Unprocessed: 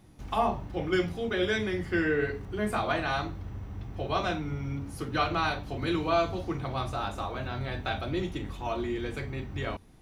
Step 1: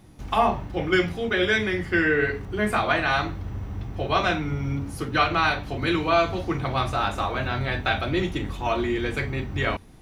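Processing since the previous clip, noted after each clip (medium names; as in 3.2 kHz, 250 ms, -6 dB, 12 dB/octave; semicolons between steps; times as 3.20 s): dynamic bell 2 kHz, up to +6 dB, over -45 dBFS, Q 0.97; in parallel at -2.5 dB: gain riding within 4 dB 0.5 s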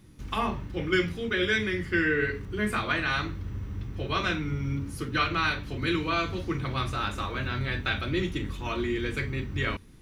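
peaking EQ 730 Hz -13.5 dB 0.66 oct; trim -2.5 dB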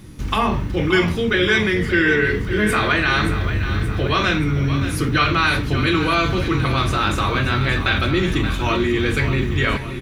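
in parallel at -2.5 dB: compressor with a negative ratio -33 dBFS; on the sum: feedback delay 576 ms, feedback 56%, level -10.5 dB; trim +7 dB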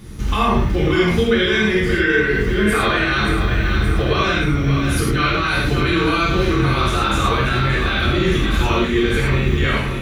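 peak limiter -13.5 dBFS, peak gain reduction 9.5 dB; gated-style reverb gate 130 ms flat, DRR -3.5 dB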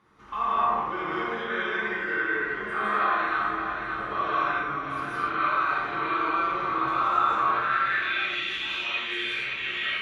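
algorithmic reverb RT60 0.97 s, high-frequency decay 0.5×, pre-delay 120 ms, DRR -6 dB; band-pass sweep 1.1 kHz -> 2.8 kHz, 7.49–8.44 s; trim -7 dB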